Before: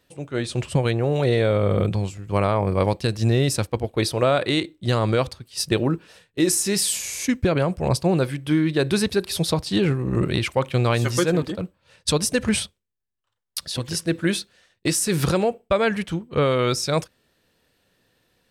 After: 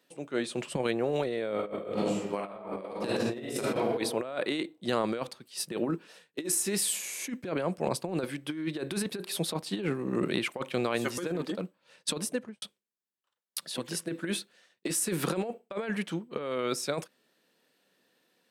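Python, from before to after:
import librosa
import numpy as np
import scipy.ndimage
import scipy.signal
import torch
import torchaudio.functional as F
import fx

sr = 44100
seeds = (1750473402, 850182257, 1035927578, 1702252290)

y = fx.reverb_throw(x, sr, start_s=1.53, length_s=2.43, rt60_s=1.1, drr_db=-4.0)
y = fx.studio_fade_out(y, sr, start_s=12.13, length_s=0.49)
y = scipy.signal.sosfilt(scipy.signal.butter(4, 190.0, 'highpass', fs=sr, output='sos'), y)
y = fx.dynamic_eq(y, sr, hz=5300.0, q=1.4, threshold_db=-41.0, ratio=4.0, max_db=-7)
y = fx.over_compress(y, sr, threshold_db=-23.0, ratio=-0.5)
y = y * librosa.db_to_amplitude(-7.0)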